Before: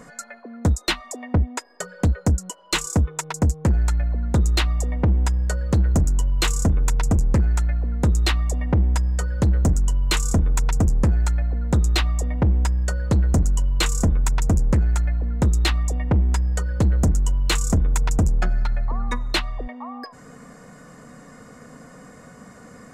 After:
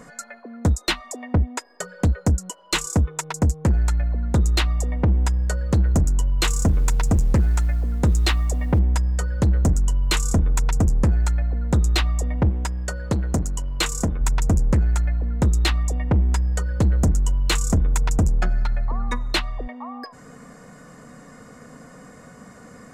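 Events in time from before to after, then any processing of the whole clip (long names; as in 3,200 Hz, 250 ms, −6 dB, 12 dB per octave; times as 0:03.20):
0:06.51–0:08.79: mu-law and A-law mismatch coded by mu
0:12.49–0:14.21: low-shelf EQ 100 Hz −8.5 dB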